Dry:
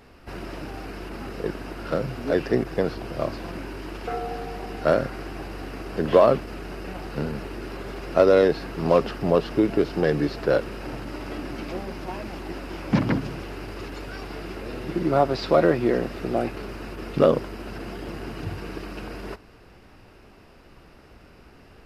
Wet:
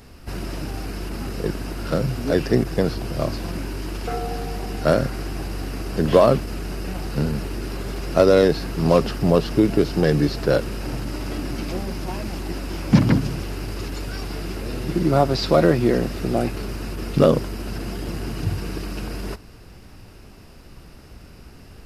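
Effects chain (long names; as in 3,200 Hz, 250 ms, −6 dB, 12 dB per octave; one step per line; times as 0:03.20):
bass and treble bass +8 dB, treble +11 dB
level +1 dB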